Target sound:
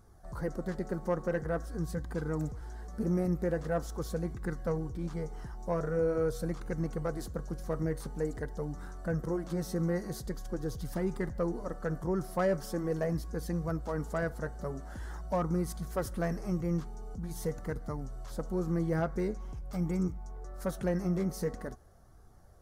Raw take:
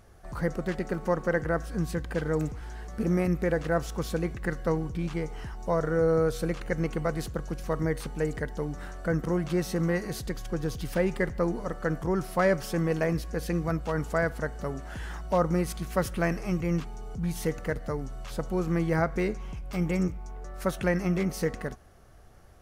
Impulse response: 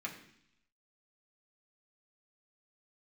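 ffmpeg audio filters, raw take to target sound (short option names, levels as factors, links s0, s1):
-af "equalizer=f=2600:w=1.7:g=-14,asoftclip=type=tanh:threshold=0.158,flanger=delay=0.8:depth=5:regen=-54:speed=0.45:shape=sinusoidal"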